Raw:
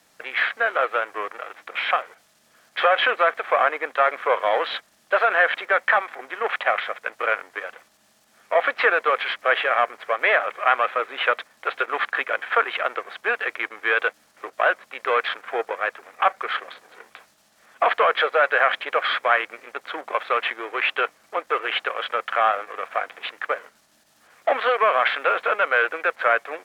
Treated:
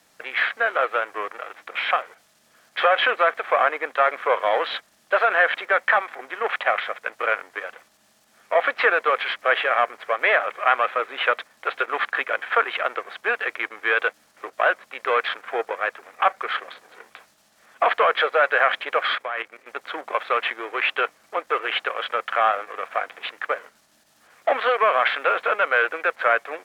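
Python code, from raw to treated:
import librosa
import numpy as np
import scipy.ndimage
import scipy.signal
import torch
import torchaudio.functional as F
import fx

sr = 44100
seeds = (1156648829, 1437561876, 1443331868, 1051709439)

y = fx.level_steps(x, sr, step_db=14, at=(19.15, 19.68))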